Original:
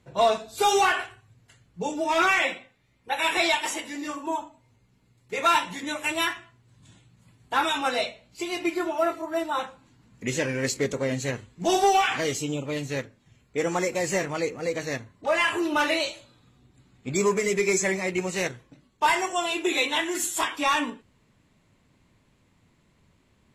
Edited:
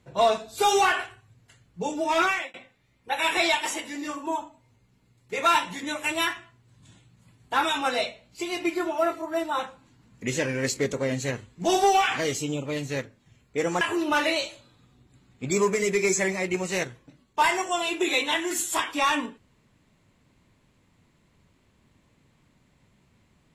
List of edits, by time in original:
2.19–2.54 s: fade out
13.81–15.45 s: delete

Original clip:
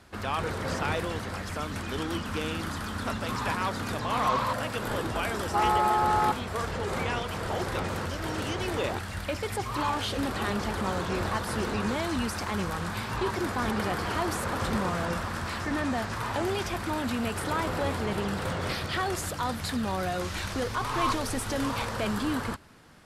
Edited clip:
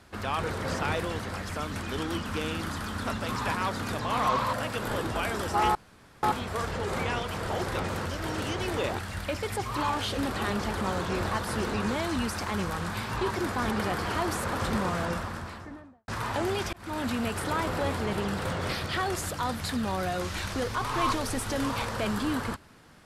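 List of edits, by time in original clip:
5.75–6.23 s: room tone
14.99–16.08 s: studio fade out
16.73–17.03 s: fade in

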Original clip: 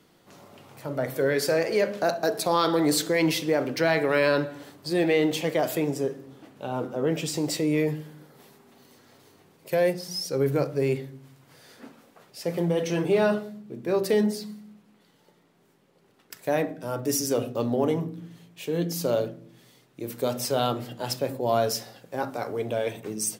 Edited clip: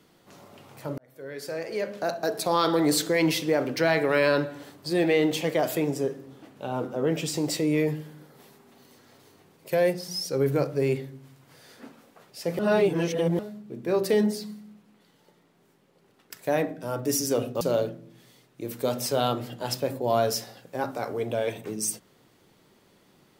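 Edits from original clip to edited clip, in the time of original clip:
0.98–2.67 s: fade in
12.59–13.39 s: reverse
17.61–19.00 s: delete

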